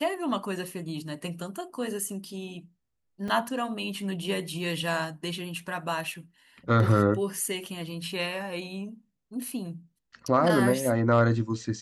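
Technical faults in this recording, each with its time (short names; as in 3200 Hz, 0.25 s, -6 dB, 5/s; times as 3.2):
3.28 gap 4.5 ms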